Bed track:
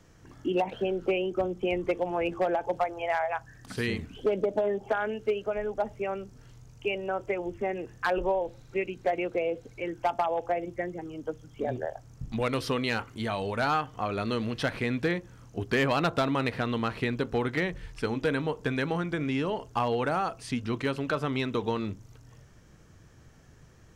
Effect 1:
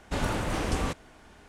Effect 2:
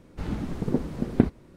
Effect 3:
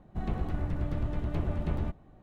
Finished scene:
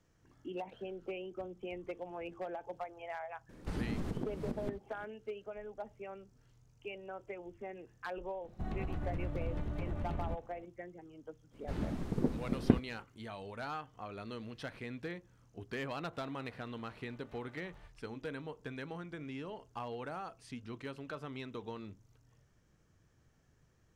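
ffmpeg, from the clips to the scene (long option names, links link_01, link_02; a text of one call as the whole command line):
ffmpeg -i bed.wav -i cue0.wav -i cue1.wav -i cue2.wav -filter_complex "[2:a]asplit=2[link_01][link_02];[3:a]asplit=2[link_03][link_04];[0:a]volume=-14.5dB[link_05];[link_01]acompressor=threshold=-27dB:ratio=10:attack=0.15:release=249:knee=1:detection=rms[link_06];[link_03]alimiter=level_in=2.5dB:limit=-24dB:level=0:latency=1:release=56,volume=-2.5dB[link_07];[link_04]highpass=900[link_08];[link_06]atrim=end=1.56,asetpts=PTS-STARTPTS,volume=-2dB,afade=type=in:duration=0.004:curve=hsin,afade=type=out:start_time=1.556:duration=0.004:curve=hsin,adelay=153909S[link_09];[link_07]atrim=end=2.22,asetpts=PTS-STARTPTS,volume=-3dB,afade=type=in:duration=0.004:curve=hsin,afade=type=out:start_time=2.216:duration=0.004:curve=hsin,adelay=8440[link_10];[link_02]atrim=end=1.56,asetpts=PTS-STARTPTS,volume=-6.5dB,afade=type=in:duration=0.05,afade=type=out:start_time=1.51:duration=0.05,adelay=11500[link_11];[link_08]atrim=end=2.22,asetpts=PTS-STARTPTS,volume=-14.5dB,afade=type=in:duration=0.004:curve=hsin,afade=type=out:start_time=2.216:duration=0.004:curve=hsin,adelay=15970[link_12];[link_05][link_09][link_10][link_11][link_12]amix=inputs=5:normalize=0" out.wav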